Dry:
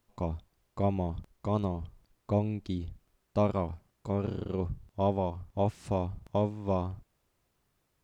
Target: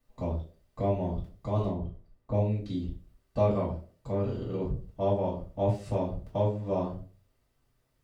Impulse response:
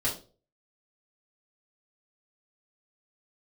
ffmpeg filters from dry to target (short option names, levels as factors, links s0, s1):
-filter_complex "[0:a]asettb=1/sr,asplit=3[s0][s1][s2];[s0]atrim=end=1.704[s3];[s1]atrim=start=1.7:end=2.34,asetpts=PTS-STARTPTS,afade=t=in:d=0.004:c=qsin,afade=t=out:st=0.636:d=0.004:c=qsin,highshelf=f=2000:g=-11[s4];[s2]atrim=start=2.336[s5];[s3][s4]acrossfade=d=0.004:c1=hsin:c2=qsin[s6];[s6][s5]acrossfade=d=0.004:c1=qsin:c2=hsin[s7];[1:a]atrim=start_sample=2205[s8];[s7][s8]afir=irnorm=-1:irlink=0,volume=0.422"